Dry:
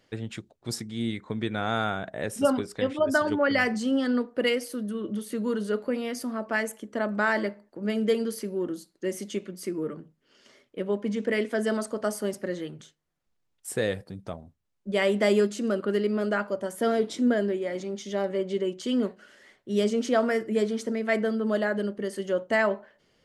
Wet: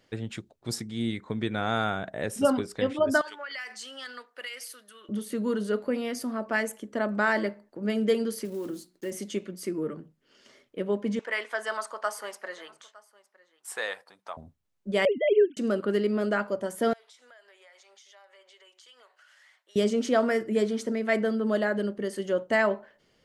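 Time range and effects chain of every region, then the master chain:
0:03.21–0:05.09: high-pass filter 1,400 Hz + downward compressor, threshold −34 dBFS
0:08.45–0:09.12: one scale factor per block 5 bits + mains-hum notches 60/120/180/240/300/360 Hz + downward compressor 2 to 1, threshold −32 dBFS
0:11.19–0:14.37: high-pass with resonance 980 Hz, resonance Q 2.1 + high-shelf EQ 7,300 Hz −5.5 dB + single-tap delay 910 ms −22.5 dB
0:15.05–0:15.57: three sine waves on the formant tracks + downward expander −37 dBFS
0:16.93–0:19.76: high-pass filter 820 Hz 24 dB per octave + downward compressor 4 to 1, threshold −55 dBFS
whole clip: no processing

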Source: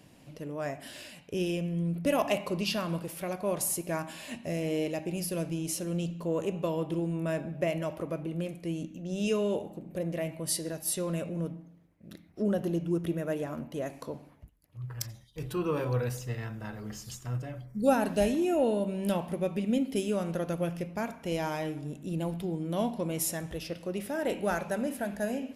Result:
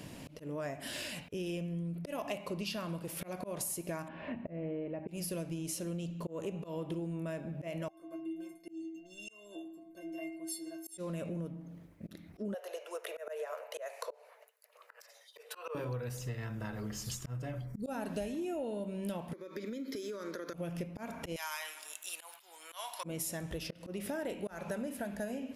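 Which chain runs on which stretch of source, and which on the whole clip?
0:04.08–0:05.08: Bessel low-pass filter 1,400 Hz, order 4 + downward compressor 1.5 to 1, threshold −41 dBFS
0:07.88–0:10.98: low-shelf EQ 200 Hz −7 dB + stiff-string resonator 320 Hz, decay 0.53 s, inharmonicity 0.03
0:12.54–0:15.75: Chebyshev high-pass with heavy ripple 440 Hz, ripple 3 dB + notch filter 3,300 Hz, Q 13
0:19.33–0:20.54: high-pass filter 320 Hz 24 dB per octave + downward compressor 10 to 1, threshold −38 dBFS + phaser with its sweep stopped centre 2,800 Hz, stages 6
0:21.36–0:23.04: high-pass filter 1,000 Hz 24 dB per octave + high-shelf EQ 6,500 Hz +10.5 dB
whole clip: notch filter 770 Hz, Q 21; volume swells 285 ms; downward compressor 6 to 1, threshold −46 dBFS; level +9 dB

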